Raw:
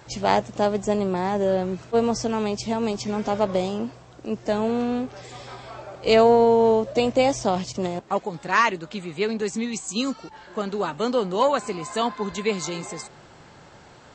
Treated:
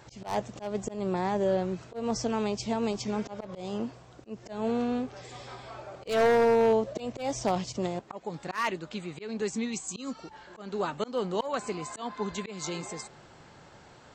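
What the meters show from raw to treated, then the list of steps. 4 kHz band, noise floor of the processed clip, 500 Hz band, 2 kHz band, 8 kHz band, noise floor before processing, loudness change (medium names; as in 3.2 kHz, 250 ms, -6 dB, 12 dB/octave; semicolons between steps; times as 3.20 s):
-8.5 dB, -53 dBFS, -7.5 dB, -8.0 dB, -5.0 dB, -48 dBFS, -7.5 dB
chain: wavefolder -11 dBFS; slow attack 203 ms; trim -4.5 dB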